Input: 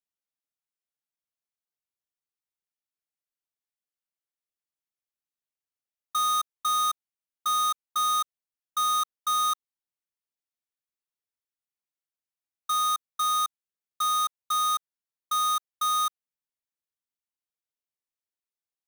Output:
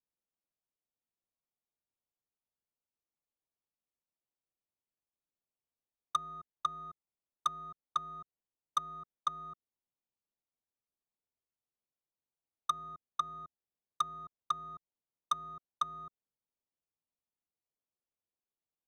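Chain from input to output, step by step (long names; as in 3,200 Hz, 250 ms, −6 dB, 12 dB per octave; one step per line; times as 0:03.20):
adaptive Wiener filter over 25 samples
treble cut that deepens with the level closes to 330 Hz, closed at −26.5 dBFS
level +3.5 dB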